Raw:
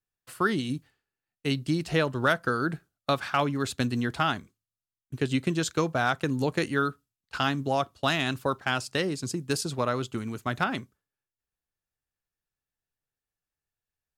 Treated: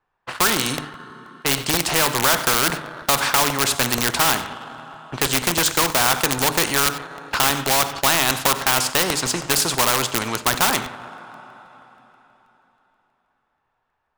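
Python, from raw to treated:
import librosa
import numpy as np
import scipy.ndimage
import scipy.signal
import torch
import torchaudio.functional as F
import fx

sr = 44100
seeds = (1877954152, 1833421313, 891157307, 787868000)

p1 = fx.env_lowpass(x, sr, base_hz=2000.0, full_db=-24.5)
p2 = fx.peak_eq(p1, sr, hz=940.0, db=12.5, octaves=0.85)
p3 = fx.hum_notches(p2, sr, base_hz=50, count=6)
p4 = fx.rev_double_slope(p3, sr, seeds[0], early_s=0.49, late_s=3.8, knee_db=-18, drr_db=15.0)
p5 = (np.mod(10.0 ** (20.0 / 20.0) * p4 + 1.0, 2.0) - 1.0) / 10.0 ** (20.0 / 20.0)
p6 = p4 + F.gain(torch.from_numpy(p5), -4.5).numpy()
p7 = fx.low_shelf(p6, sr, hz=200.0, db=-7.5)
p8 = p7 + fx.echo_single(p7, sr, ms=94, db=-23.0, dry=0)
p9 = fx.leveller(p8, sr, passes=1)
p10 = fx.buffer_crackle(p9, sr, first_s=0.78, period_s=0.16, block=64, kind='repeat')
p11 = fx.spectral_comp(p10, sr, ratio=2.0)
y = F.gain(torch.from_numpy(p11), 3.5).numpy()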